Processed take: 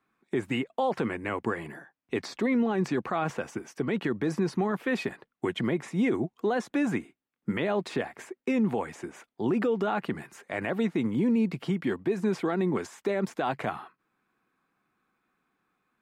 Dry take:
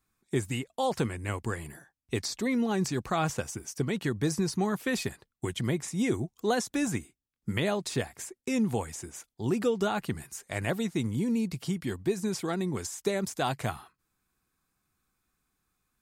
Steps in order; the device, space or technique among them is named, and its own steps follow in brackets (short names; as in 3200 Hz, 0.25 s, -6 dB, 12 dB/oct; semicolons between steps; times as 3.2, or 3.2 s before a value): DJ mixer with the lows and highs turned down (three-band isolator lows -23 dB, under 170 Hz, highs -21 dB, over 2900 Hz; limiter -26 dBFS, peak gain reduction 10 dB); gain +7.5 dB